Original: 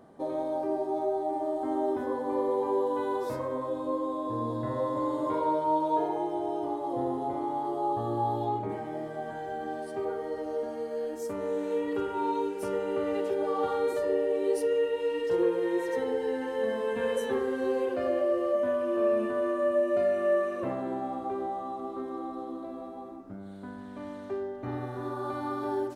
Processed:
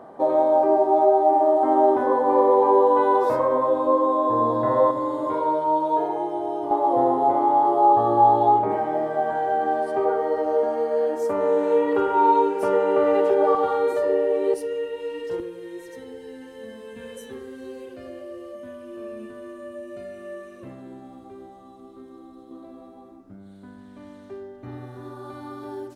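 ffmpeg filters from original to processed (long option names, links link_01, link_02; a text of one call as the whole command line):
ffmpeg -i in.wav -af "asetnsamples=nb_out_samples=441:pad=0,asendcmd='4.91 equalizer g 5.5;6.71 equalizer g 14.5;13.55 equalizer g 8;14.54 equalizer g -2;15.4 equalizer g -14;22.51 equalizer g -6',equalizer=frequency=820:width_type=o:width=2.7:gain=15" out.wav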